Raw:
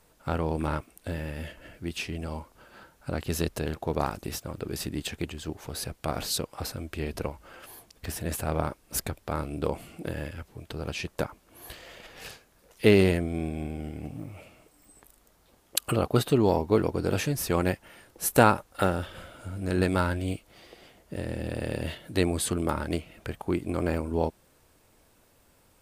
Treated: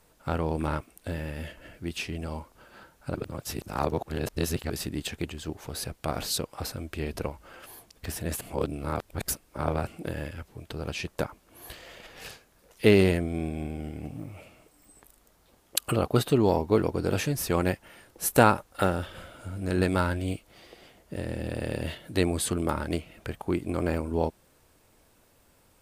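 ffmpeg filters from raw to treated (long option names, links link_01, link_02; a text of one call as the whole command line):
ffmpeg -i in.wav -filter_complex "[0:a]asplit=5[link_01][link_02][link_03][link_04][link_05];[link_01]atrim=end=3.152[link_06];[link_02]atrim=start=3.148:end=4.702,asetpts=PTS-STARTPTS,areverse[link_07];[link_03]atrim=start=4.698:end=8.412[link_08];[link_04]atrim=start=8.408:end=9.872,asetpts=PTS-STARTPTS,areverse[link_09];[link_05]atrim=start=9.868[link_10];[link_06][link_07]acrossfade=duration=0.004:curve1=hsin:curve2=hsin[link_11];[link_11][link_08]acrossfade=duration=0.004:curve1=hsin:curve2=hsin[link_12];[link_12][link_09]acrossfade=duration=0.004:curve1=hsin:curve2=hsin[link_13];[link_13][link_10]acrossfade=duration=0.004:curve1=hsin:curve2=hsin" out.wav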